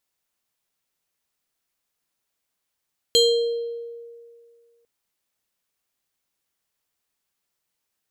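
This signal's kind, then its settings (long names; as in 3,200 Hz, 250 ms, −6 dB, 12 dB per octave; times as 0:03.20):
two-operator FM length 1.70 s, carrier 468 Hz, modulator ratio 7.84, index 1.5, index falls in 1.08 s exponential, decay 2.06 s, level −12 dB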